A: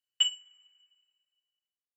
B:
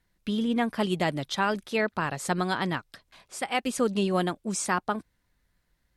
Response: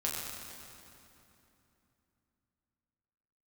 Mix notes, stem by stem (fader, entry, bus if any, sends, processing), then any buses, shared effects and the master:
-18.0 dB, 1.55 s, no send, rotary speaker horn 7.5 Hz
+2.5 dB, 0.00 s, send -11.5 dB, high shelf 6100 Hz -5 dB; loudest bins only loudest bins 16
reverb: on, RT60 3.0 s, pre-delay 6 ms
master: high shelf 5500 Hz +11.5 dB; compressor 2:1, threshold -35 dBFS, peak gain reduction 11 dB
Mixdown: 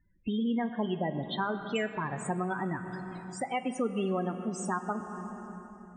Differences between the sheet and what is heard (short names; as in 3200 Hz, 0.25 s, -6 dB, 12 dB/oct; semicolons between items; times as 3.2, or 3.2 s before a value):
stem A -18.0 dB -> -7.0 dB; master: missing high shelf 5500 Hz +11.5 dB